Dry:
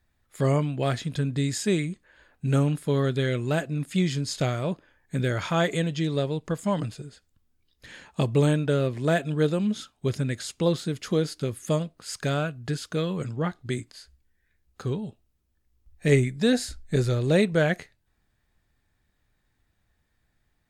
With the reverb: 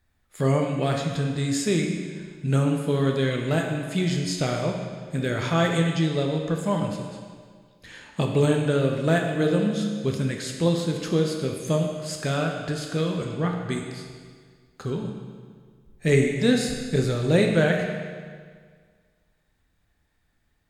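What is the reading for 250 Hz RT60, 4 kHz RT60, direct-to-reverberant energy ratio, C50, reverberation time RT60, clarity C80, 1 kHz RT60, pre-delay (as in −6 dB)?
1.8 s, 1.6 s, 1.0 dB, 3.5 dB, 1.8 s, 5.0 dB, 1.8 s, 11 ms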